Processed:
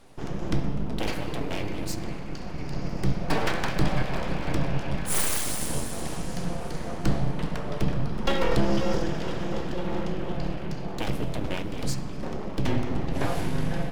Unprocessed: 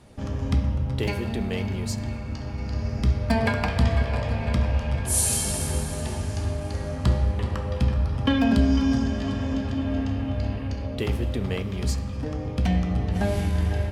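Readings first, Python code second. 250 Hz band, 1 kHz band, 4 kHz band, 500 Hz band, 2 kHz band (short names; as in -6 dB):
-4.0 dB, +0.5 dB, -0.5 dB, 0.0 dB, -1.0 dB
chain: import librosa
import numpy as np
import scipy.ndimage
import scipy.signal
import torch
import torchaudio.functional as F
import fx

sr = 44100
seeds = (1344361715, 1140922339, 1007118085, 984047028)

y = np.abs(x)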